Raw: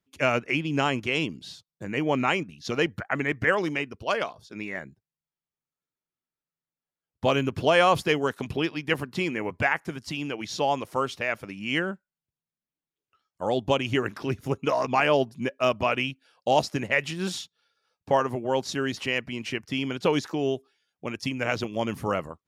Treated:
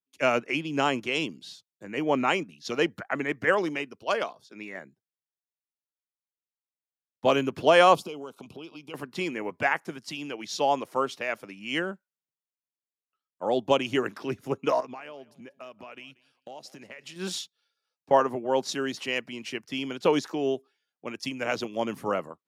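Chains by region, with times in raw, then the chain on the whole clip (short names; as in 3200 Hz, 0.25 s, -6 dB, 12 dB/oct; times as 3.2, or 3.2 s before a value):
7.95–8.94 Butterworth band-stop 1800 Hz, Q 1.7 + compressor 8:1, threshold -32 dBFS
14.8–17.16 compressor 12:1, threshold -34 dBFS + feedback echo 0.186 s, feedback 28%, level -20 dB
whole clip: HPF 210 Hz 12 dB/oct; dynamic EQ 2100 Hz, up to -3 dB, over -37 dBFS, Q 1.1; three-band expander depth 40%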